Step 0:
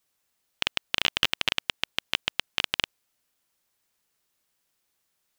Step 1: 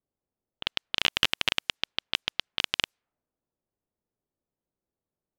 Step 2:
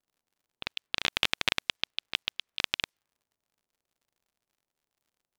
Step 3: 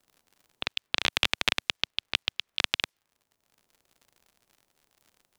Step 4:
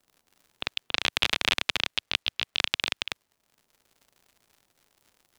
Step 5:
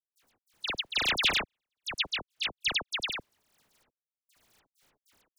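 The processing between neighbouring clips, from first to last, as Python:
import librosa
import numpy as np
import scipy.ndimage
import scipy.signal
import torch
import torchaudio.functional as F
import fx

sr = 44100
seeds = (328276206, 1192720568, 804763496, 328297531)

y1 = fx.env_lowpass(x, sr, base_hz=500.0, full_db=-29.0)
y2 = y1 * np.sin(2.0 * np.pi * 370.0 * np.arange(len(y1)) / sr)
y2 = fx.dmg_crackle(y2, sr, seeds[0], per_s=76.0, level_db=-60.0)
y3 = fx.band_squash(y2, sr, depth_pct=40)
y3 = F.gain(torch.from_numpy(y3), 2.5).numpy()
y4 = y3 + 10.0 ** (-3.5 / 20.0) * np.pad(y3, (int(279 * sr / 1000.0), 0))[:len(y3)]
y5 = fx.step_gate(y4, sr, bpm=98, pattern='.x.xxxxxx...xx.x', floor_db=-60.0, edge_ms=4.5)
y5 = fx.dispersion(y5, sr, late='lows', ms=76.0, hz=2300.0)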